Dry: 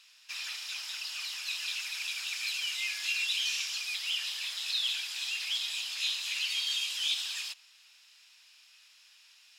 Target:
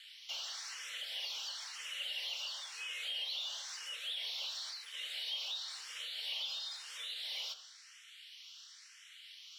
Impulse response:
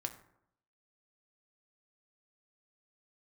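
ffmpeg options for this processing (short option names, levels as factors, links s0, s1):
-filter_complex "[0:a]acrossover=split=3400[s0][s1];[s1]acompressor=threshold=0.0126:ratio=4:attack=1:release=60[s2];[s0][s2]amix=inputs=2:normalize=0,asettb=1/sr,asplit=3[s3][s4][s5];[s3]atrim=end=4.264[s6];[s4]atrim=start=4.26:end=6.7,asetpts=PTS-STARTPTS,afade=t=in:d=0.004:c=qsin,afade=t=out:st=2.436:d=0.004:c=qsin,highpass=f=960:w=0.5412,highpass=f=960:w=1.3066[s7];[s5]atrim=start=6.696[s8];[s6][s7]acrossfade=d=0.004:c1=hsin:c2=qsin[s9];[s9][s8]acrossfade=d=0.004:c1=qsin:c2=hsin,acompressor=threshold=0.01:ratio=6,asplit=2[s10][s11];[s11]highpass=f=720:p=1,volume=5.62,asoftclip=type=tanh:threshold=0.0299[s12];[s10][s12]amix=inputs=2:normalize=0,lowpass=f=2100:p=1,volume=0.501,afreqshift=450[s13];[1:a]atrim=start_sample=2205[s14];[s13][s14]afir=irnorm=-1:irlink=0,asplit=2[s15][s16];[s16]afreqshift=0.98[s17];[s15][s17]amix=inputs=2:normalize=1,volume=1.68"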